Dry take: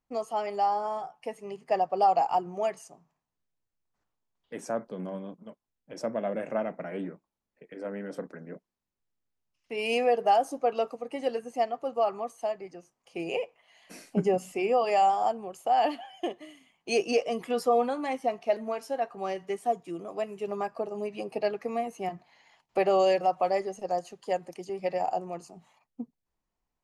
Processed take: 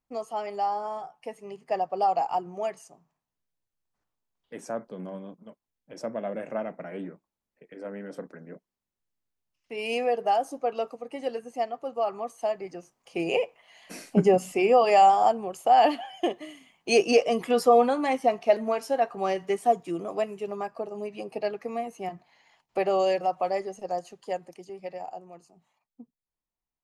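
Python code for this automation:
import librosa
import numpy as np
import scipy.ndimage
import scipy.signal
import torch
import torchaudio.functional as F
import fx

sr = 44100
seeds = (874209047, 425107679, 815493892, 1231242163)

y = fx.gain(x, sr, db=fx.line((12.0, -1.5), (12.75, 5.5), (20.13, 5.5), (20.53, -1.0), (24.2, -1.0), (25.18, -10.0)))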